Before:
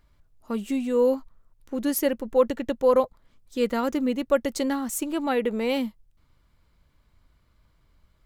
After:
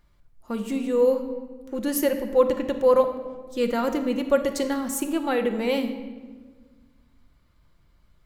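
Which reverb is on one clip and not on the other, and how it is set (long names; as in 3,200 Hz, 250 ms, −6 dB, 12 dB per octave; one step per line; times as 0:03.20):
rectangular room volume 1,300 cubic metres, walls mixed, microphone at 0.88 metres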